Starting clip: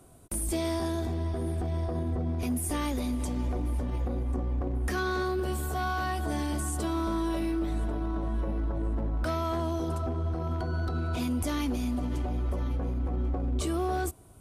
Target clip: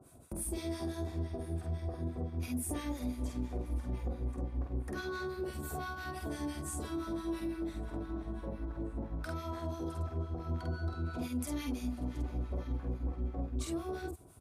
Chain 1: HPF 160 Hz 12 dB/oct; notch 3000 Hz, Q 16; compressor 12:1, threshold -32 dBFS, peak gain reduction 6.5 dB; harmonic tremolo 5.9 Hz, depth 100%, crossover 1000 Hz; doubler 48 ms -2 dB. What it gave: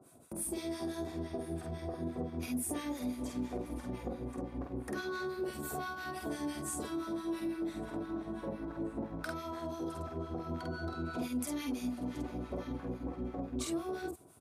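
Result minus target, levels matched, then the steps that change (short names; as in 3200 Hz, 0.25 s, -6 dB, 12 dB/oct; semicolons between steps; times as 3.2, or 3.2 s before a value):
125 Hz band -6.5 dB
change: HPF 49 Hz 12 dB/oct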